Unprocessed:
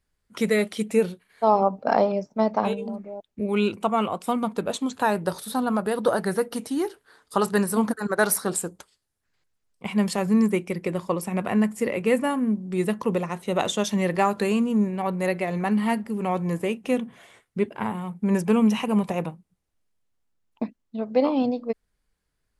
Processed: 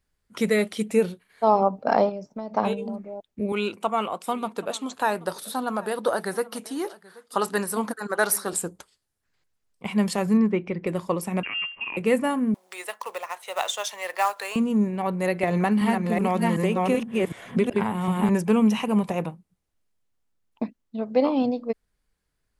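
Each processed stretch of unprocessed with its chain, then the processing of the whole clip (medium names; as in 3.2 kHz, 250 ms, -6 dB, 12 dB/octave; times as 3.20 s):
2.09–2.54 s: dynamic bell 1.8 kHz, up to -5 dB, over -44 dBFS, Q 1.5 + compression 8:1, threshold -29 dBFS
3.52–8.53 s: high-pass 430 Hz 6 dB/octave + delay 781 ms -21.5 dB
10.37–10.87 s: distance through air 250 m + upward compressor, threshold -28 dBFS
11.43–11.97 s: compression 2.5:1, threshold -31 dBFS + frequency inversion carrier 3 kHz
12.54–14.56 s: high-pass 650 Hz 24 dB/octave + short-mantissa float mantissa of 2-bit + tape noise reduction on one side only encoder only
15.43–18.29 s: chunks repeated in reverse 378 ms, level -1 dB + three bands compressed up and down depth 100%
whole clip: none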